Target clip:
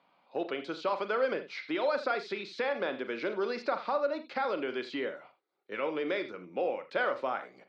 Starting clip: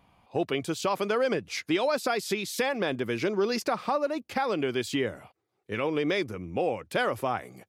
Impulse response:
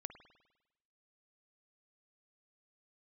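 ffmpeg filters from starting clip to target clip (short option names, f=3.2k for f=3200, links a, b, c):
-filter_complex "[0:a]highpass=f=200:w=0.5412,highpass=f=200:w=1.3066,equalizer=f=210:t=q:w=4:g=-4,equalizer=f=560:t=q:w=4:g=6,equalizer=f=960:t=q:w=4:g=3,equalizer=f=1.4k:t=q:w=4:g=7,equalizer=f=2.1k:t=q:w=4:g=3,equalizer=f=4.1k:t=q:w=4:g=7,lowpass=f=5k:w=0.5412,lowpass=f=5k:w=1.3066[a];[1:a]atrim=start_sample=2205,atrim=end_sample=6615,asetrate=57330,aresample=44100[b];[a][b]afir=irnorm=-1:irlink=0,acrossover=split=2900[c][d];[d]acompressor=threshold=-47dB:ratio=4:attack=1:release=60[e];[c][e]amix=inputs=2:normalize=0"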